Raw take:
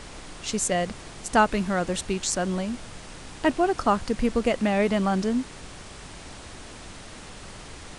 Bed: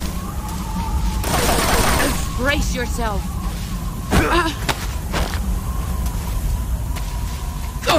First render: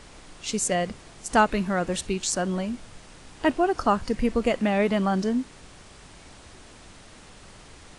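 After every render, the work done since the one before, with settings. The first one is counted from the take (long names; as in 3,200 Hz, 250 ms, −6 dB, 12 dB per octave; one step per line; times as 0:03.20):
noise reduction from a noise print 6 dB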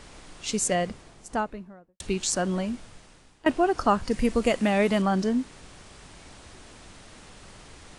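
0:00.65–0:02.00: fade out and dull
0:02.69–0:03.46: fade out, to −19 dB
0:04.11–0:05.02: high-shelf EQ 5,500 Hz +9 dB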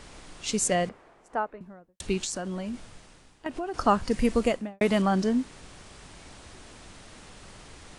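0:00.89–0:01.61: three-way crossover with the lows and the highs turned down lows −15 dB, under 330 Hz, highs −17 dB, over 2,200 Hz
0:02.24–0:03.74: downward compressor 4 to 1, threshold −30 dBFS
0:04.38–0:04.81: fade out and dull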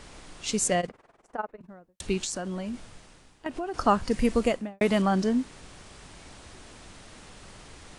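0:00.80–0:01.69: amplitude modulation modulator 20 Hz, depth 80%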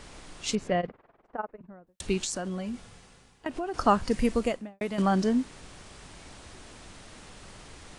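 0:00.55–0:01.87: high-frequency loss of the air 360 metres
0:02.49–0:03.46: notch comb filter 310 Hz
0:04.07–0:04.98: fade out, to −11 dB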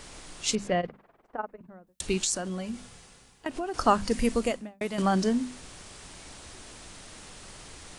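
high-shelf EQ 4,500 Hz +7.5 dB
mains-hum notches 50/100/150/200/250 Hz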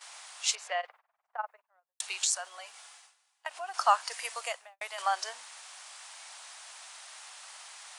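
Butterworth high-pass 710 Hz 36 dB per octave
noise gate −53 dBFS, range −14 dB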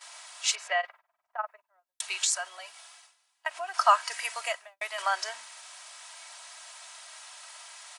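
dynamic equaliser 1,800 Hz, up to +5 dB, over −47 dBFS, Q 0.91
comb filter 3.1 ms, depth 55%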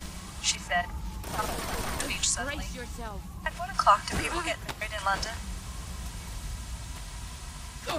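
mix in bed −16.5 dB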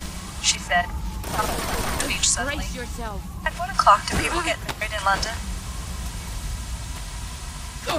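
level +7 dB
brickwall limiter −2 dBFS, peak gain reduction 2 dB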